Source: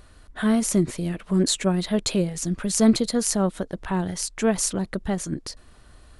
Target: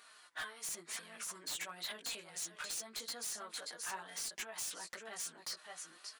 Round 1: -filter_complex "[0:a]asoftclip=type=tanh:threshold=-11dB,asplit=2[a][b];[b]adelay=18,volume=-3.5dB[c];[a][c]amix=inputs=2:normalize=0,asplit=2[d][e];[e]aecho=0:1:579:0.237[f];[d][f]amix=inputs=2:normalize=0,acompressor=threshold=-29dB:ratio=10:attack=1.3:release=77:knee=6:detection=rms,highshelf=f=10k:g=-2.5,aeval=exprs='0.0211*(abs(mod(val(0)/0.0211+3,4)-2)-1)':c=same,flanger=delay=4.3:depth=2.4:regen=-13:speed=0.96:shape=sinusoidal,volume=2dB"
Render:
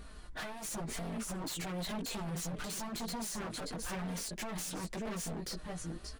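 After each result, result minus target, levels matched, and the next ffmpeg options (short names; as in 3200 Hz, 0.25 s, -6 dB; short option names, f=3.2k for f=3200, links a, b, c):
soft clip: distortion +17 dB; 1000 Hz band +3.0 dB
-filter_complex "[0:a]asoftclip=type=tanh:threshold=-1dB,asplit=2[a][b];[b]adelay=18,volume=-3.5dB[c];[a][c]amix=inputs=2:normalize=0,asplit=2[d][e];[e]aecho=0:1:579:0.237[f];[d][f]amix=inputs=2:normalize=0,acompressor=threshold=-29dB:ratio=10:attack=1.3:release=77:knee=6:detection=rms,highshelf=f=10k:g=-2.5,aeval=exprs='0.0211*(abs(mod(val(0)/0.0211+3,4)-2)-1)':c=same,flanger=delay=4.3:depth=2.4:regen=-13:speed=0.96:shape=sinusoidal,volume=2dB"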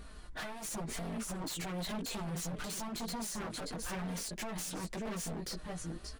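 1000 Hz band +3.0 dB
-filter_complex "[0:a]asoftclip=type=tanh:threshold=-1dB,asplit=2[a][b];[b]adelay=18,volume=-3.5dB[c];[a][c]amix=inputs=2:normalize=0,asplit=2[d][e];[e]aecho=0:1:579:0.237[f];[d][f]amix=inputs=2:normalize=0,acompressor=threshold=-29dB:ratio=10:attack=1.3:release=77:knee=6:detection=rms,highpass=1.1k,highshelf=f=10k:g=-2.5,aeval=exprs='0.0211*(abs(mod(val(0)/0.0211+3,4)-2)-1)':c=same,flanger=delay=4.3:depth=2.4:regen=-13:speed=0.96:shape=sinusoidal,volume=2dB"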